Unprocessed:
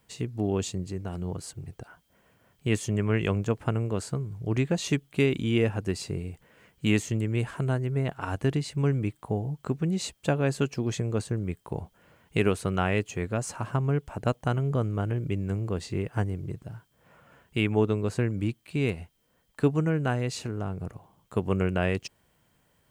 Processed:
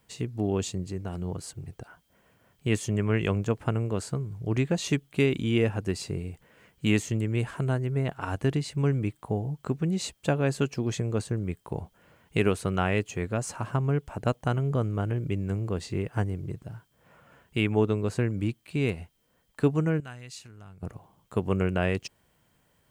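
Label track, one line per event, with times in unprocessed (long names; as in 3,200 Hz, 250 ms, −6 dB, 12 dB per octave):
20.000000	20.830000	guitar amp tone stack bass-middle-treble 5-5-5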